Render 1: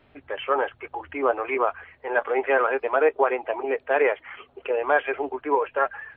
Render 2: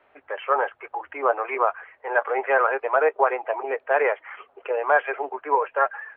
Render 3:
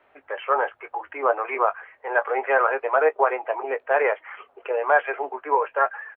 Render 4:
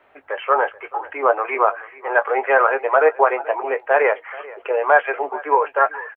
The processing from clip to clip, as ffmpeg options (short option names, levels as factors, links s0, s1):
-filter_complex "[0:a]acrossover=split=450 2300:gain=0.0708 1 0.126[s0][s1][s2];[s0][s1][s2]amix=inputs=3:normalize=0,volume=1.5"
-filter_complex "[0:a]asplit=2[s0][s1];[s1]adelay=19,volume=0.224[s2];[s0][s2]amix=inputs=2:normalize=0"
-af "aecho=1:1:433:0.106,volume=1.68"